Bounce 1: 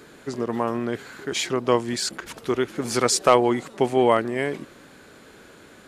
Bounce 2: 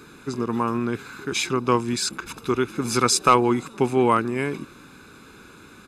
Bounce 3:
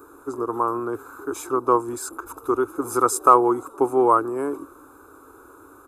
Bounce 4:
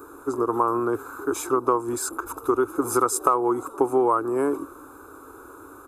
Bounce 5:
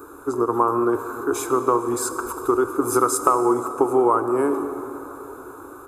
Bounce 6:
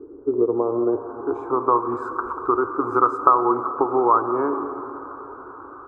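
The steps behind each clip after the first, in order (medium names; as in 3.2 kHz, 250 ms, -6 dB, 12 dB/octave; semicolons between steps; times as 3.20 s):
comb 0.8 ms, depth 68%
FFT filter 100 Hz 0 dB, 200 Hz -25 dB, 280 Hz +6 dB, 1.3 kHz +8 dB, 2 kHz -17 dB, 4.7 kHz -15 dB, 7.5 kHz 0 dB, 13 kHz +11 dB; trim -4.5 dB
compression 8:1, threshold -20 dBFS, peak gain reduction 12.5 dB; trim +3.5 dB
plate-style reverb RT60 4.2 s, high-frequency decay 0.5×, DRR 8 dB; trim +2 dB
low-pass sweep 390 Hz -> 1.2 kHz, 0.12–1.97 s; trim -3.5 dB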